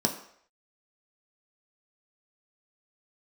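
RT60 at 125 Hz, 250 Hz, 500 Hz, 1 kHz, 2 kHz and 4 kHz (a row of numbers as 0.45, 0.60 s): 0.40, 0.50, 0.65, 0.65, 0.65, 0.60 s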